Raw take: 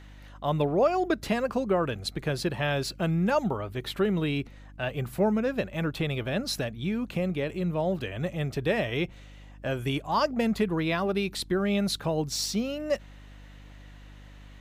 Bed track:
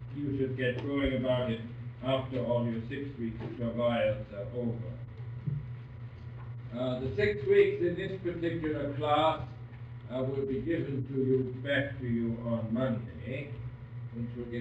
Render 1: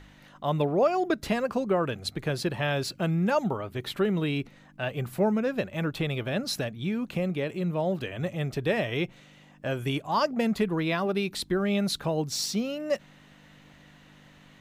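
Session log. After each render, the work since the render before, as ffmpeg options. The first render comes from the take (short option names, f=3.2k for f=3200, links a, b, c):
-af "bandreject=f=50:t=h:w=4,bandreject=f=100:t=h:w=4"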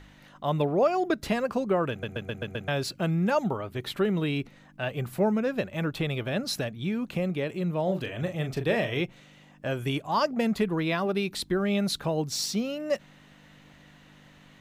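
-filter_complex "[0:a]asettb=1/sr,asplit=3[a][b][c];[a]atrim=end=7.834[d];[b]atrim=start=7.83:end=9.01,asetpts=PTS-STARTPTS,afade=t=in:d=0.004:c=qsin,afade=t=out:st=1.176:d=0.004:c=qsin,asplit=2[e][f];[f]adelay=38,volume=-8dB[g];[e][g]amix=inputs=2:normalize=0,atrim=end_sample=52038[h];[c]atrim=start=9.006[i];[d][h]acrossfade=d=0.004:c1=hsin:c2=qsin[j];[j][i]acrossfade=d=0.004:c1=qsin:c2=hsin,asplit=7[k][l][m][n][o][p][q];[k]atrim=end=2.032[r];[l]atrim=start=1.898:end=2.032[s];[m]atrim=start=1.898:end=2.032[t];[n]atrim=start=1.898:end=2.032[u];[o]atrim=start=1.898:end=2.032[v];[p]atrim=start=1.898:end=2.032[w];[q]atrim=start=2.678[x];[r][s]acrossfade=d=0.004:c1=hsin:c2=hsin[y];[y][t]acrossfade=d=0.004:c1=hsin:c2=hsin[z];[z][u]acrossfade=d=0.004:c1=hsin:c2=hsin[aa];[aa][v]acrossfade=d=0.004:c1=hsin:c2=hsin[ab];[ab][w]acrossfade=d=0.004:c1=hsin:c2=hsin[ac];[ac][x]acrossfade=d=0.004:c1=hsin:c2=hsin"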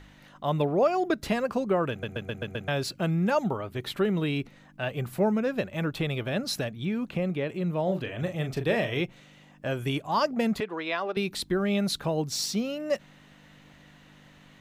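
-filter_complex "[0:a]asettb=1/sr,asplit=3[a][b][c];[a]atrim=end=6.854[d];[b]atrim=start=6.85:end=8.19,asetpts=PTS-STARTPTS,afade=t=in:d=0.004:c=qsin,afade=t=out:st=1.336:d=0.004:c=qsin,acrossover=split=3900[e][f];[f]acompressor=threshold=-58dB:ratio=4:attack=1:release=60[g];[e][g]amix=inputs=2:normalize=0[h];[c]atrim=start=8.186[i];[d][h]acrossfade=d=0.004:c1=hsin:c2=qsin[j];[j][i]acrossfade=d=0.004:c1=qsin:c2=hsin,asettb=1/sr,asplit=3[k][l][m];[k]atrim=end=10.604[n];[l]atrim=start=10.6:end=11.17,asetpts=PTS-STARTPTS,afade=t=in:d=0.004:c=qsin,afade=t=out:st=0.566:d=0.004:c=qsin,highpass=470,lowpass=5.2k[o];[m]atrim=start=11.166[p];[n][o]acrossfade=d=0.004:c1=hsin:c2=qsin[q];[q][p]acrossfade=d=0.004:c1=qsin:c2=hsin"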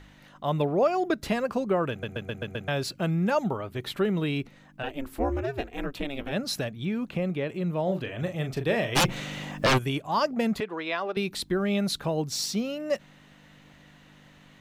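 -filter_complex "[0:a]asplit=3[a][b][c];[a]afade=t=out:st=4.82:d=0.02[d];[b]aeval=exprs='val(0)*sin(2*PI*140*n/s)':c=same,afade=t=in:st=4.82:d=0.02,afade=t=out:st=6.31:d=0.02[e];[c]afade=t=in:st=6.31:d=0.02[f];[d][e][f]amix=inputs=3:normalize=0,asplit=3[g][h][i];[g]afade=t=out:st=8.95:d=0.02[j];[h]aeval=exprs='0.141*sin(PI/2*5.01*val(0)/0.141)':c=same,afade=t=in:st=8.95:d=0.02,afade=t=out:st=9.77:d=0.02[k];[i]afade=t=in:st=9.77:d=0.02[l];[j][k][l]amix=inputs=3:normalize=0"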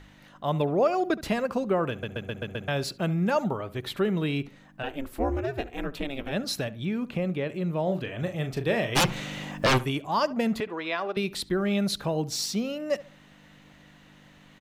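-filter_complex "[0:a]asplit=2[a][b];[b]adelay=70,lowpass=f=2k:p=1,volume=-17dB,asplit=2[c][d];[d]adelay=70,lowpass=f=2k:p=1,volume=0.29,asplit=2[e][f];[f]adelay=70,lowpass=f=2k:p=1,volume=0.29[g];[a][c][e][g]amix=inputs=4:normalize=0"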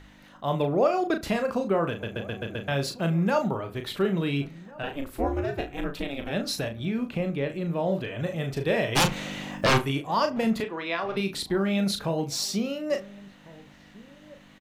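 -filter_complex "[0:a]asplit=2[a][b];[b]adelay=36,volume=-7dB[c];[a][c]amix=inputs=2:normalize=0,asplit=2[d][e];[e]adelay=1399,volume=-21dB,highshelf=f=4k:g=-31.5[f];[d][f]amix=inputs=2:normalize=0"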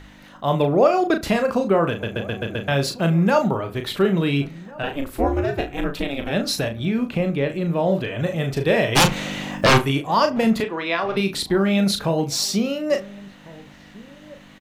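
-af "volume=6.5dB"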